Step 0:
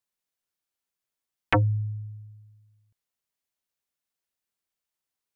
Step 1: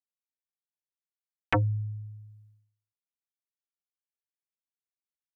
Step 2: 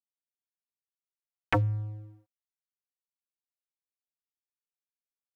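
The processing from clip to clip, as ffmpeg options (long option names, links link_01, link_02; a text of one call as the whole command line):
ffmpeg -i in.wav -af "agate=range=-33dB:threshold=-52dB:ratio=3:detection=peak,volume=-3.5dB" out.wav
ffmpeg -i in.wav -af "aeval=exprs='sgn(val(0))*max(abs(val(0))-0.00531,0)':channel_layout=same" out.wav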